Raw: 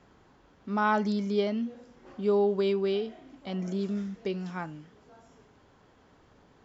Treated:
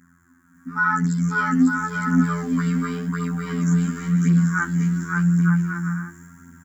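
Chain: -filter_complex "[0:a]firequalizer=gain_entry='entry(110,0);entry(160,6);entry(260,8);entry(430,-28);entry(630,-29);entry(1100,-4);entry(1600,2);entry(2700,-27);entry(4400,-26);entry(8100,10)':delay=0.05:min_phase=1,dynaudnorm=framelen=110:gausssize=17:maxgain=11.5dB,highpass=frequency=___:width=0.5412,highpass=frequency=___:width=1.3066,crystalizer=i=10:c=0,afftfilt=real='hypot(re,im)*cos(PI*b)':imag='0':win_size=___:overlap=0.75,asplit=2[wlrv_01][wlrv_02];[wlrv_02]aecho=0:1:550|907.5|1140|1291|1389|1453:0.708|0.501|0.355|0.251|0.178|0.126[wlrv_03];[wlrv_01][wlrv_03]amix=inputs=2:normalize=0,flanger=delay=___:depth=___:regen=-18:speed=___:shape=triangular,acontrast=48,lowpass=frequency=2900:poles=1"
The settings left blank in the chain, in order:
49, 49, 2048, 0.1, 4.4, 0.92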